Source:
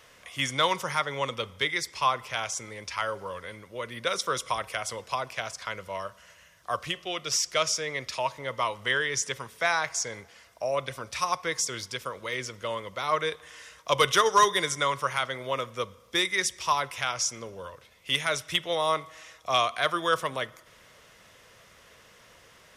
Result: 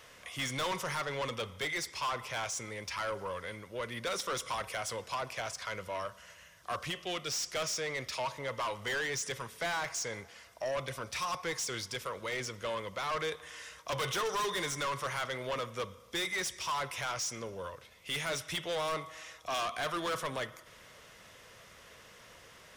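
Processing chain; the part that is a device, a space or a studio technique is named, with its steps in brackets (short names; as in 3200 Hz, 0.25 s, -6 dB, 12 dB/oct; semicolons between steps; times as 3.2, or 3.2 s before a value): saturation between pre-emphasis and de-emphasis (high shelf 8200 Hz +6 dB; soft clip -30.5 dBFS, distortion -5 dB; high shelf 8200 Hz -6 dB)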